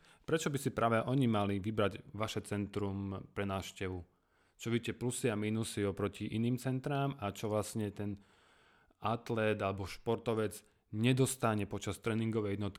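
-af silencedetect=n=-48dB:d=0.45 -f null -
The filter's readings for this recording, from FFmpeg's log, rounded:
silence_start: 4.03
silence_end: 4.60 | silence_duration: 0.58
silence_start: 8.17
silence_end: 9.03 | silence_duration: 0.86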